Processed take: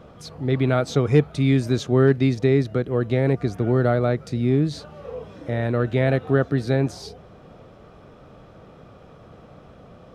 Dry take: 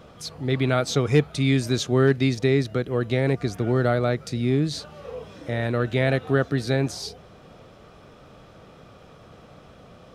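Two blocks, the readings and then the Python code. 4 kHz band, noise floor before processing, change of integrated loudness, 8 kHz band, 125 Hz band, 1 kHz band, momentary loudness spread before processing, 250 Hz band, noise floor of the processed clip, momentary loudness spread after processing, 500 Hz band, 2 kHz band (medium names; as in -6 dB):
-5.0 dB, -49 dBFS, +2.0 dB, no reading, +2.5 dB, +0.5 dB, 14 LU, +2.5 dB, -48 dBFS, 17 LU, +2.0 dB, -2.0 dB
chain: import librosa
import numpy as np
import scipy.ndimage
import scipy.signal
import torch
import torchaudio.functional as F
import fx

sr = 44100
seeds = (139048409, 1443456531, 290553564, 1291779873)

y = fx.high_shelf(x, sr, hz=2000.0, db=-9.5)
y = y * librosa.db_to_amplitude(2.5)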